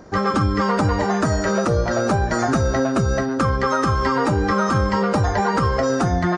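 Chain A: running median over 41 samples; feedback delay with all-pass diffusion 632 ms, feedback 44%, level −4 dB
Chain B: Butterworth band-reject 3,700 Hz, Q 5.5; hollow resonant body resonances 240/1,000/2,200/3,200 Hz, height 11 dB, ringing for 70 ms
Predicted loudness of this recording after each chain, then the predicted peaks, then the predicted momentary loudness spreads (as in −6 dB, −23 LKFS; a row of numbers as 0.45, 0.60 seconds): −20.5, −17.5 LKFS; −8.0, −3.5 dBFS; 2, 2 LU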